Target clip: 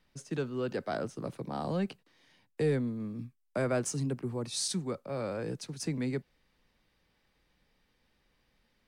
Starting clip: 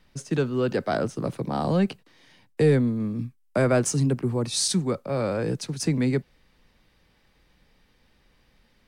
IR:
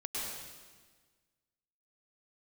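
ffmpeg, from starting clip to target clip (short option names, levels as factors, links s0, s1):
-af "lowshelf=f=170:g=-3.5,volume=0.376"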